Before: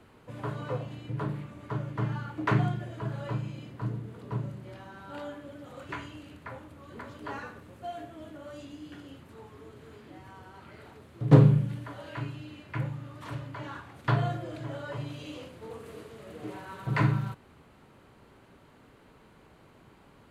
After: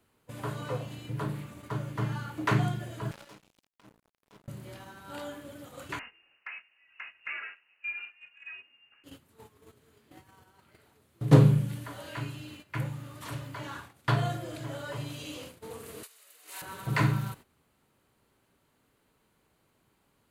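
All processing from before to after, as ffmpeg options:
-filter_complex "[0:a]asettb=1/sr,asplit=3[a][b][c];[a]atrim=end=3.114[d];[b]atrim=start=3.11:end=4.48,asetpts=PTS-STARTPTS,afade=t=in:d=0.004:c=qsin,afade=t=out:st=1.366:d=0.004:c=qsin,highpass=f=190:w=0.5412,highpass=f=190:w=1.3066,acrusher=bits=5:mix=0:aa=0.5,acompressor=threshold=-43dB:ratio=16:attack=3.2:release=140:knee=1:detection=peak[e];[c]atrim=start=4.476[f];[d][e]acrossfade=d=0.004:c1=hsin:c2=qsin[g];[g][f]acrossfade=d=0.004:c1=qsin:c2=hsin,asettb=1/sr,asplit=3[h][i][j];[h]atrim=end=5.994[k];[i]atrim=start=5.99:end=9.04,asetpts=PTS-STARTPTS,afade=t=in:d=0.004:c=qsin,afade=t=out:st=3.046:d=0.004:c=qsin,highpass=440,lowpass=f=2.6k:t=q:w=0.5098,lowpass=f=2.6k:t=q:w=0.6013,lowpass=f=2.6k:t=q:w=0.9,lowpass=f=2.6k:t=q:w=2.563,afreqshift=-3100[l];[j]atrim=start=9.036[m];[k][l]acrossfade=d=0.004:c1=hsin:c2=qsin[n];[n][m]acrossfade=d=0.004:c1=qsin:c2=hsin,asettb=1/sr,asplit=3[o][p][q];[o]atrim=end=16.034[r];[p]atrim=start=16.03:end=16.62,asetpts=PTS-STARTPTS,afade=t=in:d=0.004:c=qsin,afade=t=out:st=0.586:d=0.004:c=qsin,highpass=960,highshelf=f=2.5k:g=11,bandreject=f=3.3k:w=20[s];[q]atrim=start=16.616[t];[r][s]acrossfade=d=0.004:c1=hsin:c2=qsin[u];[u][t]acrossfade=d=0.004:c1=qsin:c2=hsin,agate=range=-14dB:threshold=-46dB:ratio=16:detection=peak,aemphasis=mode=production:type=75kf,volume=-1dB"

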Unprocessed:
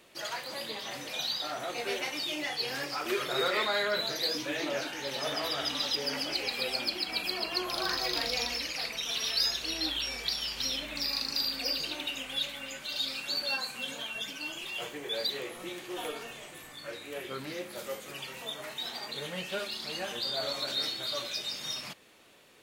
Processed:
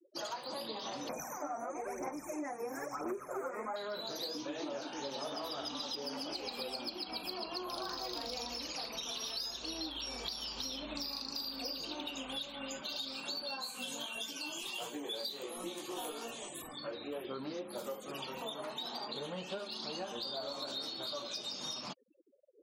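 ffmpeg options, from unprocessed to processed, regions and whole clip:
-filter_complex "[0:a]asettb=1/sr,asplit=3[a][b][c];[a]atrim=end=1.094[d];[b]atrim=start=1.09:end=3.76,asetpts=PTS-STARTPTS,afade=t=in:d=0.004:c=qsin,afade=t=out:st=2.666:d=0.004:c=qsin,aphaser=in_gain=1:out_gain=1:delay=4.3:decay=0.66:speed=1:type=sinusoidal,asuperstop=centerf=3700:order=12:qfactor=1.1[e];[c]atrim=start=3.756[f];[d][e]acrossfade=d=0.004:c1=hsin:c2=qsin[g];[g][f]acrossfade=d=0.004:c1=qsin:c2=hsin,asettb=1/sr,asplit=3[h][i][j];[h]atrim=end=13.624[k];[i]atrim=start=13.62:end=16.62,asetpts=PTS-STARTPTS,afade=t=in:d=0.004:c=qsin,afade=t=out:st=2.996:d=0.004:c=qsin,highshelf=f=3.2k:g=9.5,flanger=delay=17:depth=4.1:speed=1.5[l];[j]atrim=start=16.616[m];[k][l]acrossfade=d=0.004:c1=hsin:c2=qsin[n];[n][m]acrossfade=d=0.004:c1=qsin:c2=hsin,afftfilt=real='re*gte(hypot(re,im),0.00447)':imag='im*gte(hypot(re,im),0.00447)':win_size=1024:overlap=0.75,equalizer=f=125:t=o:w=1:g=-5,equalizer=f=250:t=o:w=1:g=5,equalizer=f=1k:t=o:w=1:g=6,equalizer=f=2k:t=o:w=1:g=-12,acompressor=threshold=-41dB:ratio=6,volume=3dB"

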